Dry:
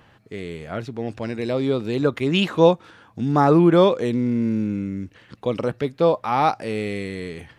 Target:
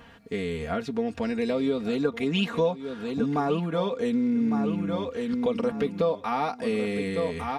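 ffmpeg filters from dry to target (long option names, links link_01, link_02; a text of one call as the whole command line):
ffmpeg -i in.wav -filter_complex "[0:a]equalizer=frequency=80:width=4.8:gain=7.5,asplit=2[link_01][link_02];[link_02]aecho=0:1:1155|2310|3465:0.299|0.0687|0.0158[link_03];[link_01][link_03]amix=inputs=2:normalize=0,acompressor=threshold=-28dB:ratio=4,aecho=1:1:4.3:0.78,volume=1.5dB" out.wav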